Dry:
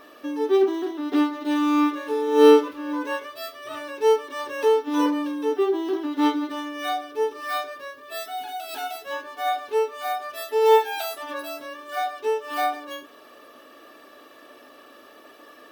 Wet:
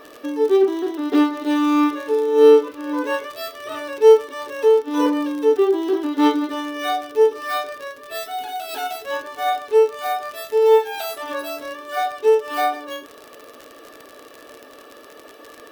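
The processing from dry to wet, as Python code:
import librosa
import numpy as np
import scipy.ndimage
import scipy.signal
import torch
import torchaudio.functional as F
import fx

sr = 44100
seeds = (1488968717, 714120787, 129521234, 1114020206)

y = fx.peak_eq(x, sr, hz=460.0, db=7.5, octaves=0.38)
y = fx.rider(y, sr, range_db=4, speed_s=0.5)
y = fx.dmg_crackle(y, sr, seeds[0], per_s=62.0, level_db=-27.0)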